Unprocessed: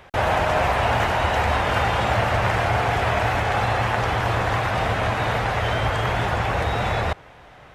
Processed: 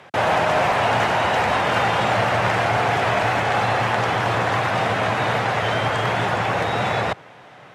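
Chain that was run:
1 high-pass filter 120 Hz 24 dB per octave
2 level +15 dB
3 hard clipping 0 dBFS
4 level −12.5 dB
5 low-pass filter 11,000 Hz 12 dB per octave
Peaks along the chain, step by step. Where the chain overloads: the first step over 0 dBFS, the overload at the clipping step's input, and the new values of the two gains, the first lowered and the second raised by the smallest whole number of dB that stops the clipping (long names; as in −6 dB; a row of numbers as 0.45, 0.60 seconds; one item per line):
−8.0, +7.0, 0.0, −12.5, −12.0 dBFS
step 2, 7.0 dB
step 2 +8 dB, step 4 −5.5 dB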